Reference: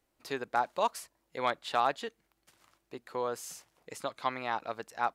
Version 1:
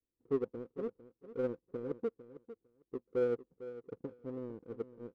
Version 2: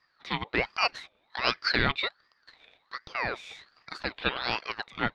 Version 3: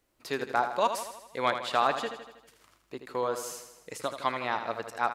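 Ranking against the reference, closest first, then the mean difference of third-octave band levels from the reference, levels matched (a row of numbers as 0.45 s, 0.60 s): 3, 2, 1; 4.5 dB, 9.0 dB, 12.5 dB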